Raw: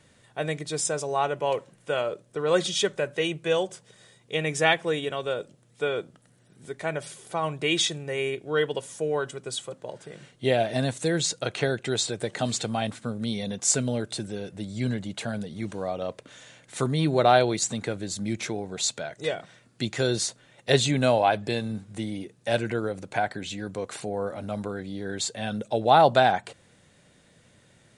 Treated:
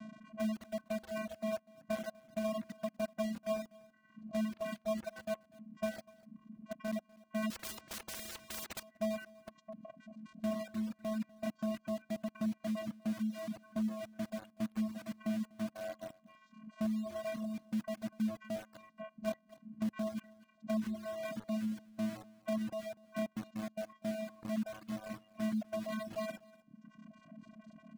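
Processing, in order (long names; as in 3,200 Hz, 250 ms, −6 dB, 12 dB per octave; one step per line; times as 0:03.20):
linear delta modulator 16 kbit/s, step −35 dBFS
channel vocoder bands 4, square 217 Hz
in parallel at −8.5 dB: bit reduction 5 bits
on the sum: brickwall limiter −21.5 dBFS, peak gain reduction 8.5 dB
reverb reduction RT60 1.1 s
on a send: single-tap delay 246 ms −12 dB
on the sum: reverb reduction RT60 1.6 s
0:07.50–0:08.83: every bin compressed towards the loudest bin 4 to 1
level −5 dB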